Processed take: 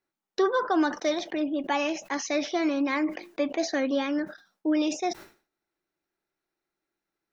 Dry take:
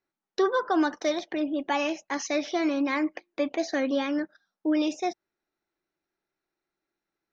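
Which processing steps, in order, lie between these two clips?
sustainer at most 150 dB/s

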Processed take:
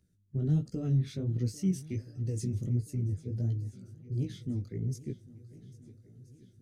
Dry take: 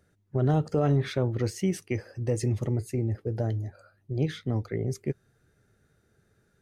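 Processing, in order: EQ curve 240 Hz 0 dB, 870 Hz -24 dB, 5800 Hz -2 dB; vibrato 9.8 Hz 11 cents; chorus 1.4 Hz, delay 16 ms, depth 5.6 ms; swung echo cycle 1.326 s, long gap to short 1.5:1, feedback 53%, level -19.5 dB

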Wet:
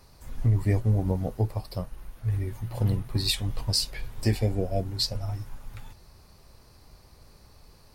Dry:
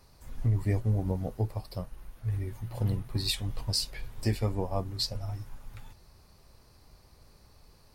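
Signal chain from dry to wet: spectral repair 4.35–4.98, 750–1500 Hz; gain +4 dB

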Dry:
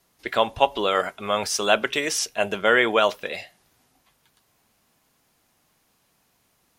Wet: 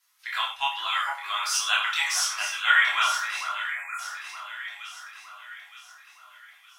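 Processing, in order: inverse Chebyshev high-pass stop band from 530 Hz, stop band 40 dB; echo with dull and thin repeats by turns 0.458 s, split 1400 Hz, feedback 67%, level -5 dB; spectral delete 3.69–3.99, 2600–6600 Hz; chorus voices 6, 0.31 Hz, delay 26 ms, depth 1.9 ms; non-linear reverb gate 0.14 s falling, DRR -1 dB

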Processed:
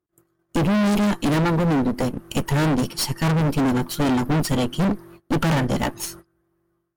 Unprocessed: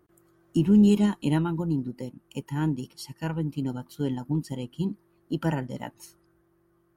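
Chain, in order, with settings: gate -59 dBFS, range -25 dB; AGC gain up to 16.5 dB; one-sided clip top -39 dBFS, bottom -19 dBFS; gain +6.5 dB

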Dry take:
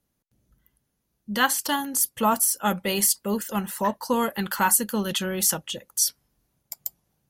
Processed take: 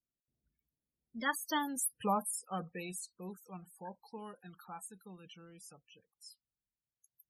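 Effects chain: Doppler pass-by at 1.72, 38 m/s, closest 13 m; loudest bins only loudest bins 32; gain -7 dB

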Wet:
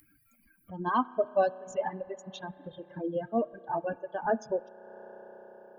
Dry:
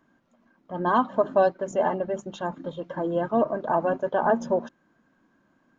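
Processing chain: per-bin expansion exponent 2; spring tank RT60 2.8 s, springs 32 ms, chirp 65 ms, DRR 7 dB; reverb removal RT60 1.2 s; upward compressor, threshold -33 dBFS; gain -2.5 dB

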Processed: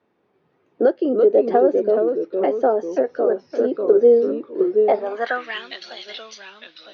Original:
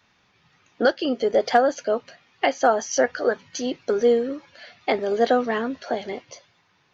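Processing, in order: echoes that change speed 0.233 s, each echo -2 st, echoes 2, each echo -6 dB; band-pass sweep 390 Hz -> 3800 Hz, 4.73–5.66; 2.85–3.3 compressor, threshold -23 dBFS, peak gain reduction 5.5 dB; gain +8.5 dB

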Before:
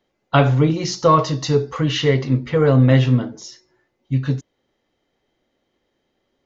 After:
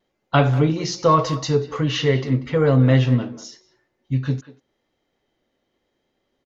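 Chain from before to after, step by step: vibrato 0.87 Hz 19 cents; speakerphone echo 0.19 s, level -14 dB; gain -2 dB

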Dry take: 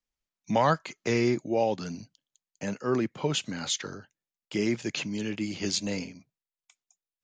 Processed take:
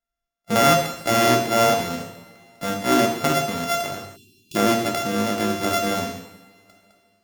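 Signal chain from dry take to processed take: sample sorter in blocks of 64 samples; AGC gain up to 5 dB; two-slope reverb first 0.8 s, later 3 s, from -22 dB, DRR 0.5 dB; spectral delete 4.16–4.56, 420–2400 Hz

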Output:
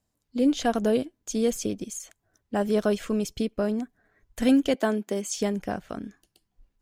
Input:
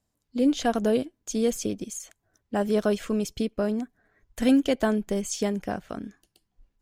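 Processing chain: 4.74–5.38 HPF 210 Hz 24 dB/oct

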